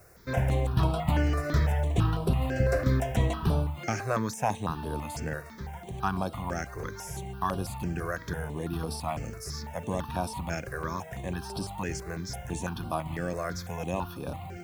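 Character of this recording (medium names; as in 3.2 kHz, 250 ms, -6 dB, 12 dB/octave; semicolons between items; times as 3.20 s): a quantiser's noise floor 10-bit, dither triangular; notches that jump at a steady rate 6 Hz 880–6700 Hz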